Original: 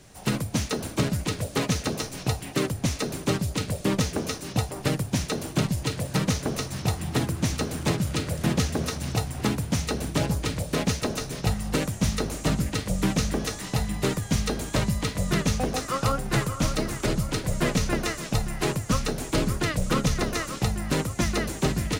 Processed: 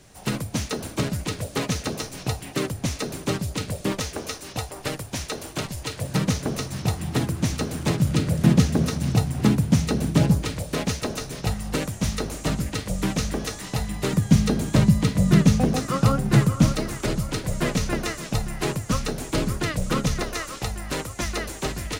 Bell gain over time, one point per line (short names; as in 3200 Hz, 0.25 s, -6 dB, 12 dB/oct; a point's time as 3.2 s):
bell 170 Hz 1.8 oct
-1 dB
from 3.92 s -9.5 dB
from 6.01 s +2.5 dB
from 8.02 s +9.5 dB
from 10.43 s -1 dB
from 14.13 s +11 dB
from 16.73 s +0.5 dB
from 20.22 s -8.5 dB